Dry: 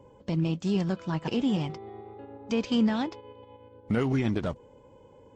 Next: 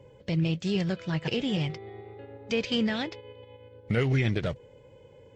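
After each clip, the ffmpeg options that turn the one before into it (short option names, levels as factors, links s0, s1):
-af "equalizer=f=125:t=o:w=1:g=7,equalizer=f=250:t=o:w=1:g=-6,equalizer=f=500:t=o:w=1:g=5,equalizer=f=1000:t=o:w=1:g=-8,equalizer=f=2000:t=o:w=1:g=9,equalizer=f=4000:t=o:w=1:g=5,volume=0.891"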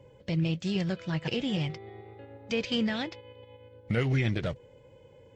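-af "bandreject=f=420:w=13,volume=0.841"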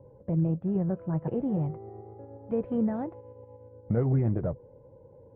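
-af "lowpass=f=1000:w=0.5412,lowpass=f=1000:w=1.3066,volume=1.26"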